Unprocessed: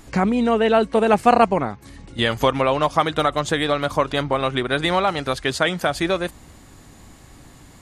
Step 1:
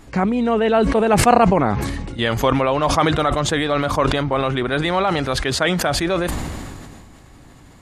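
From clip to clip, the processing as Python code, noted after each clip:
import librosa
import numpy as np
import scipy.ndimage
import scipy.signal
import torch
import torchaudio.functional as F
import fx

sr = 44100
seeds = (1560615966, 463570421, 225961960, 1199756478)

y = fx.high_shelf(x, sr, hz=4400.0, db=-7.0)
y = fx.sustainer(y, sr, db_per_s=27.0)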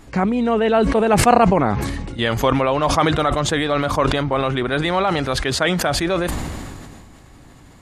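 y = x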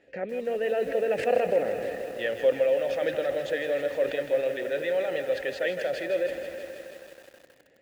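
y = fx.vowel_filter(x, sr, vowel='e')
y = fx.echo_crushed(y, sr, ms=160, feedback_pct=80, bits=8, wet_db=-9.5)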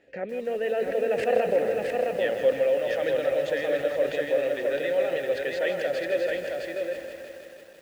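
y = x + 10.0 ** (-3.5 / 20.0) * np.pad(x, (int(664 * sr / 1000.0), 0))[:len(x)]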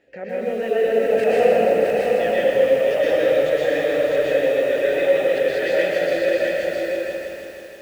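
y = fx.rev_plate(x, sr, seeds[0], rt60_s=1.3, hf_ratio=0.95, predelay_ms=105, drr_db=-6.0)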